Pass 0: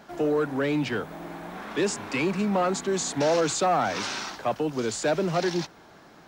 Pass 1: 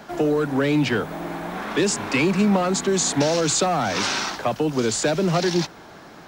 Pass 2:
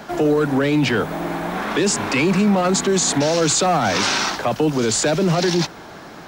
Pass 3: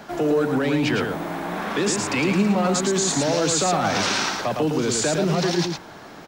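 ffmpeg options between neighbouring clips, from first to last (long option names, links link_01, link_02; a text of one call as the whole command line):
ffmpeg -i in.wav -filter_complex "[0:a]acrossover=split=250|3000[link_01][link_02][link_03];[link_02]acompressor=threshold=-28dB:ratio=6[link_04];[link_01][link_04][link_03]amix=inputs=3:normalize=0,volume=8dB" out.wav
ffmpeg -i in.wav -af "alimiter=limit=-15.5dB:level=0:latency=1:release=10,volume=5.5dB" out.wav
ffmpeg -i in.wav -af "aecho=1:1:110:0.596,volume=-4.5dB" out.wav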